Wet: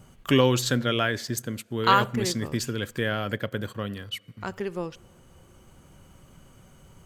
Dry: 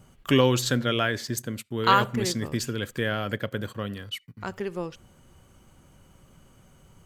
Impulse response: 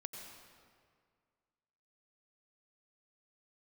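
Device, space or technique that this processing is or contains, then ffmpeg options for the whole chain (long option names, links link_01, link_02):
ducked reverb: -filter_complex "[0:a]asplit=3[link_01][link_02][link_03];[1:a]atrim=start_sample=2205[link_04];[link_02][link_04]afir=irnorm=-1:irlink=0[link_05];[link_03]apad=whole_len=311207[link_06];[link_05][link_06]sidechaincompress=threshold=-43dB:ratio=12:attack=7:release=863,volume=-4.5dB[link_07];[link_01][link_07]amix=inputs=2:normalize=0"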